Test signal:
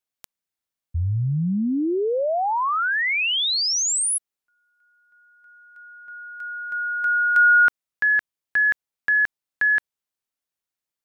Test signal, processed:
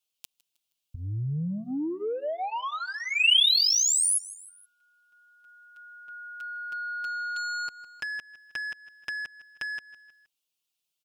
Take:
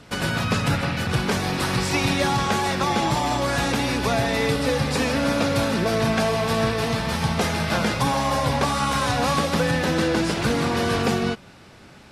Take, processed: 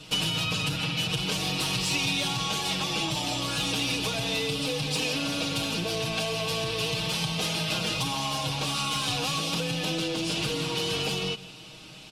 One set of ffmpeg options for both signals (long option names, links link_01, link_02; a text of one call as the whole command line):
ffmpeg -i in.wav -af "asoftclip=type=tanh:threshold=-17.5dB,aecho=1:1:6.4:0.94,aecho=1:1:157|314|471:0.075|0.0337|0.0152,acompressor=threshold=-24dB:ratio=6:attack=30:release=208:knee=6:detection=rms,highshelf=frequency=2300:width_type=q:width=3:gain=6.5,volume=-4.5dB" out.wav